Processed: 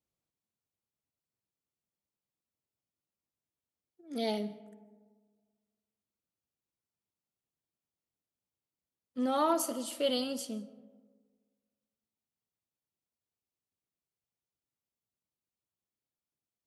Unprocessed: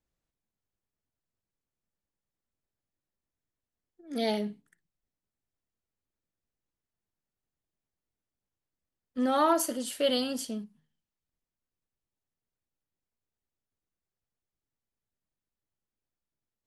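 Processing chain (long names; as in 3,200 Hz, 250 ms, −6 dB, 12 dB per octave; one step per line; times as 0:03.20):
high-pass filter 82 Hz
parametric band 1,700 Hz −7 dB 0.4 octaves
convolution reverb RT60 1.6 s, pre-delay 100 ms, DRR 18 dB
level −3.5 dB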